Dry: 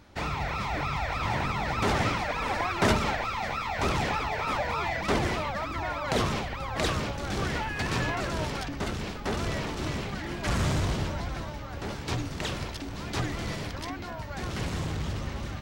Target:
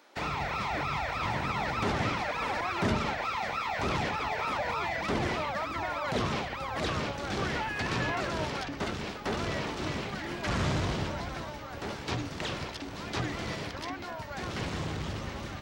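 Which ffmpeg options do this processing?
-filter_complex "[0:a]highpass=f=93:p=1,acrossover=split=300|6400[a][b][c];[a]aeval=exprs='sgn(val(0))*max(abs(val(0))-0.00355,0)':c=same[d];[b]alimiter=limit=-23dB:level=0:latency=1:release=65[e];[c]acompressor=threshold=-59dB:ratio=6[f];[d][e][f]amix=inputs=3:normalize=0"

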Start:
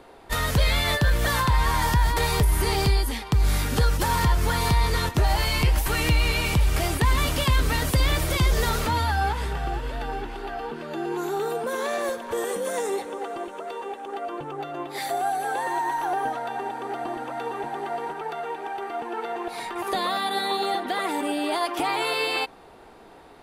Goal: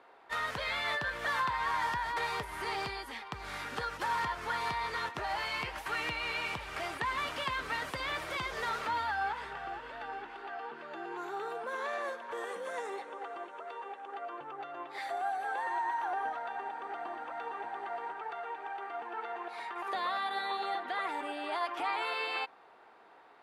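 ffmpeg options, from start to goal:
-af "bandpass=f=1.4k:t=q:w=0.87:csg=0,volume=-5dB"

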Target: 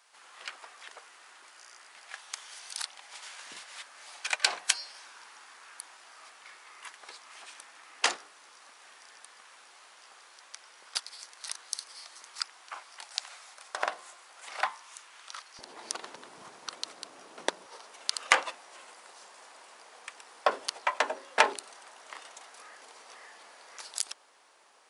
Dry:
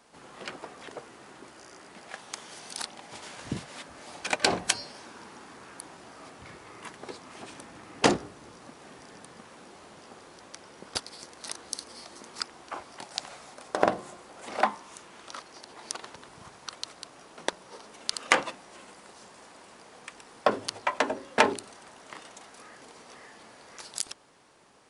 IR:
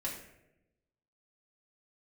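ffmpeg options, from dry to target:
-af "asetnsamples=n=441:p=0,asendcmd='15.59 highpass f 250;17.66 highpass f 630',highpass=1.2k"

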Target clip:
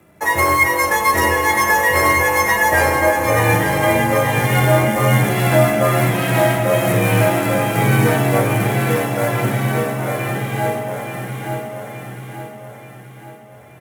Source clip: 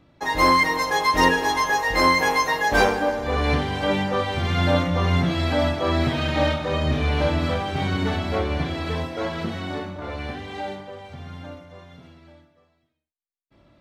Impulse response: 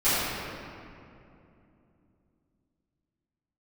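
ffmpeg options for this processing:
-filter_complex "[0:a]acrusher=bits=5:mode=log:mix=0:aa=0.000001,equalizer=f=250:t=o:w=1:g=-3,equalizer=f=500:t=o:w=1:g=4,equalizer=f=2k:t=o:w=1:g=6,equalizer=f=4k:t=o:w=1:g=-12,alimiter=limit=-11.5dB:level=0:latency=1:release=421,afreqshift=39,equalizer=f=11k:t=o:w=1.4:g=14,aecho=1:1:879|1758|2637|3516|4395|5274:0.447|0.214|0.103|0.0494|0.0237|0.0114,asplit=2[a][b];[1:a]atrim=start_sample=2205,asetrate=52920,aresample=44100,lowshelf=f=130:g=11[c];[b][c]afir=irnorm=-1:irlink=0,volume=-22dB[d];[a][d]amix=inputs=2:normalize=0,volume=4dB"

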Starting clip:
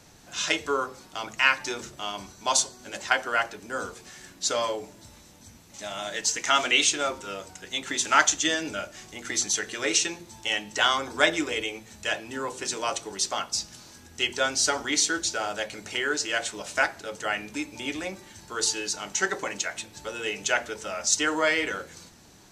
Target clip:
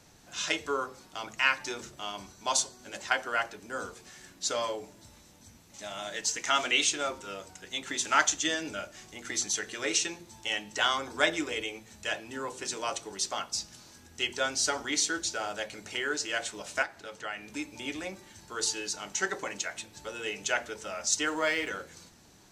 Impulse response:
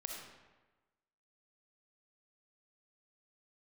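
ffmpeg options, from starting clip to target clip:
-filter_complex "[0:a]asettb=1/sr,asplit=3[a][b][c];[a]atrim=end=16.824[d];[b]atrim=start=16.82:end=17.48,asetpts=PTS-STARTPTS,afade=t=in:d=0.004:c=qsin,afade=t=out:st=0.656:d=0.004:c=qsin,acrossover=split=760|5000[e][f][g];[e]acompressor=threshold=-41dB:ratio=4[h];[f]acompressor=threshold=-30dB:ratio=4[i];[g]acompressor=threshold=-56dB:ratio=4[j];[h][i][j]amix=inputs=3:normalize=0[k];[c]atrim=start=17.476[l];[d][k]acrossfade=d=0.004:c1=hsin:c2=qsin[m];[m][l]acrossfade=d=0.004:c1=qsin:c2=hsin,asplit=3[n][o][p];[n]afade=t=out:st=21.25:d=0.02[q];[o]aeval=exprs='sgn(val(0))*max(abs(val(0))-0.00473,0)':c=same,afade=t=in:st=21.25:d=0.02,afade=t=out:st=21.68:d=0.02[r];[p]afade=t=in:st=21.68:d=0.02[s];[q][r][s]amix=inputs=3:normalize=0,volume=-4.5dB"

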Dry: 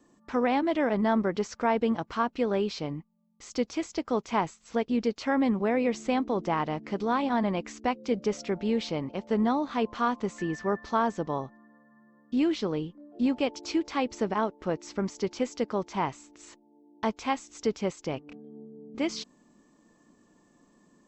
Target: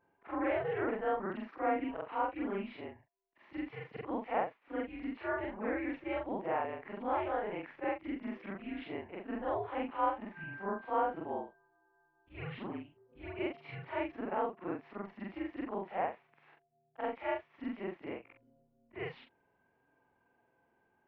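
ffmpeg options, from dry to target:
-af "afftfilt=real='re':imag='-im':win_size=4096:overlap=0.75,highpass=f=490:t=q:w=0.5412,highpass=f=490:t=q:w=1.307,lowpass=f=2.8k:t=q:w=0.5176,lowpass=f=2.8k:t=q:w=0.7071,lowpass=f=2.8k:t=q:w=1.932,afreqshift=-190"

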